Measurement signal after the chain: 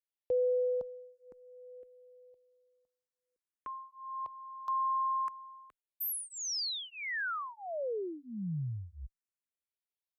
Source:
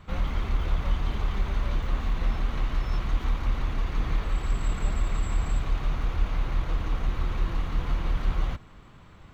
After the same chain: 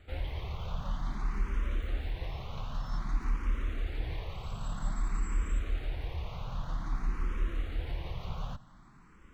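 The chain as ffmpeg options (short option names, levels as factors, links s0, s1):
-filter_complex "[0:a]asplit=2[s0][s1];[s1]afreqshift=0.52[s2];[s0][s2]amix=inputs=2:normalize=1,volume=0.631"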